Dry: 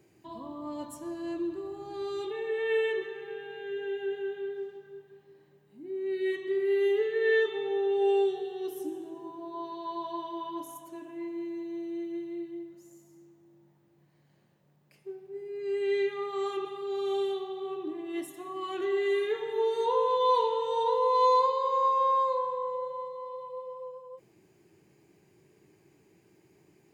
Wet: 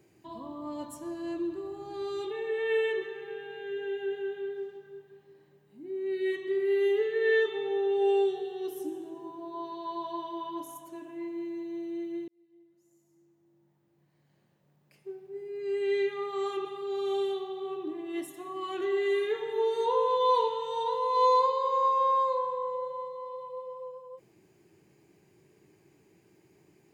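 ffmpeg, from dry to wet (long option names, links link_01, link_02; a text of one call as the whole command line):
ffmpeg -i in.wav -filter_complex "[0:a]asettb=1/sr,asplit=3[link_01][link_02][link_03];[link_01]atrim=end=20.484[link_04];[link_02]atrim=start=20.48:end=21.17,asetpts=PTS-STARTPTS,afade=type=in:duration=0.004:curve=qsin,afade=type=out:start_time=0.686:duration=0.004:curve=qsin,equalizer=frequency=580:width=1.5:gain=-7[link_05];[link_03]atrim=start=21.166[link_06];[link_04][link_05]acrossfade=duration=0.004:curve1=hsin:curve2=qsin[link_07];[link_07][link_06]acrossfade=duration=0.004:curve1=qsin:curve2=hsin,asplit=2[link_08][link_09];[link_08]atrim=end=12.28,asetpts=PTS-STARTPTS,afade=type=out:start_time=12.276:duration=0.004:curve=hsin[link_10];[link_09]atrim=start=12.28,asetpts=PTS-STARTPTS,afade=type=in:duration=2.84[link_11];[link_10][link_11]concat=n=2:v=0:a=1" out.wav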